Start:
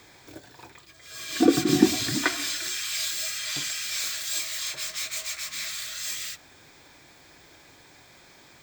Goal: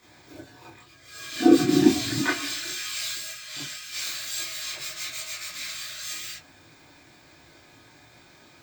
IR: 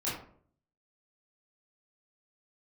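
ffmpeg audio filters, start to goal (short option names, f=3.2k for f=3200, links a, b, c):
-filter_complex "[0:a]asplit=3[a][b][c];[a]afade=t=out:st=3.16:d=0.02[d];[b]agate=range=-33dB:threshold=-26dB:ratio=3:detection=peak,afade=t=in:st=3.16:d=0.02,afade=t=out:st=3.91:d=0.02[e];[c]afade=t=in:st=3.91:d=0.02[f];[d][e][f]amix=inputs=3:normalize=0[g];[1:a]atrim=start_sample=2205,atrim=end_sample=3087[h];[g][h]afir=irnorm=-1:irlink=0,volume=-5dB"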